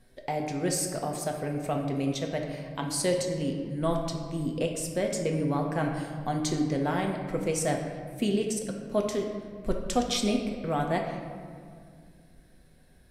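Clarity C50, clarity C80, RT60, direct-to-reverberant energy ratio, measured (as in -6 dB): 4.5 dB, 6.0 dB, 2.1 s, 1.0 dB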